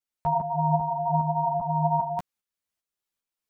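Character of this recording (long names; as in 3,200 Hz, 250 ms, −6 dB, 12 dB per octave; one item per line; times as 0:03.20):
tremolo saw up 2.5 Hz, depth 55%
a shimmering, thickened sound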